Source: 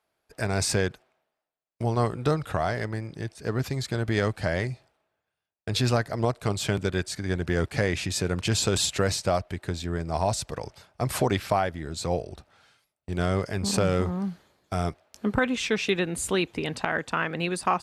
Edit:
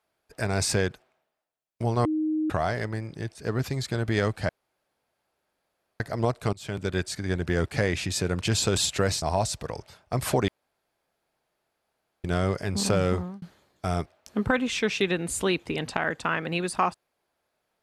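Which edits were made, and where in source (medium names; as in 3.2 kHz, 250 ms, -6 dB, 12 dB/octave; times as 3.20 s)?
2.05–2.50 s: bleep 311 Hz -23 dBFS
4.49–6.00 s: room tone
6.53–6.97 s: fade in, from -23 dB
9.22–10.10 s: delete
11.36–13.12 s: room tone
14.02–14.30 s: fade out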